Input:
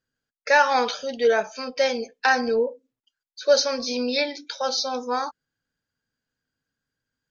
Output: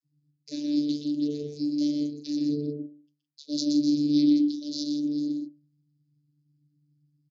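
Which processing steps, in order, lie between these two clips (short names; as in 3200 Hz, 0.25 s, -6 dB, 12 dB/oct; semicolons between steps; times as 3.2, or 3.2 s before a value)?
elliptic band-stop 260–4300 Hz, stop band 60 dB; low shelf 340 Hz +11 dB; notches 60/120/180/240/300/360/420/480/540 Hz; vocoder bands 32, saw 147 Hz; on a send: loudspeakers at several distances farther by 42 m -4 dB, 56 m -9 dB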